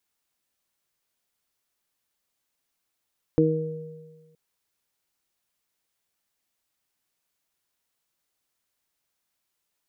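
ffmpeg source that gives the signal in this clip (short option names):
-f lavfi -i "aevalsrc='0.0891*pow(10,-3*t/1.52)*sin(2*PI*158*t)+0.15*pow(10,-3*t/0.59)*sin(2*PI*316*t)+0.119*pow(10,-3*t/1.4)*sin(2*PI*474*t)':d=0.97:s=44100"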